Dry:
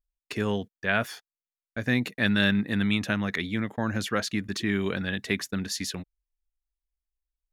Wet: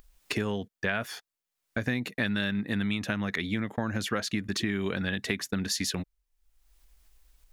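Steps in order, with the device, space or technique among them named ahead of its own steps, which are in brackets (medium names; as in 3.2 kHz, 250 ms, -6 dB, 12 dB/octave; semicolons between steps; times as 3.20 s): upward and downward compression (upward compressor, threshold -48 dBFS; compression 6:1, threshold -33 dBFS, peak gain reduction 14 dB); trim +6.5 dB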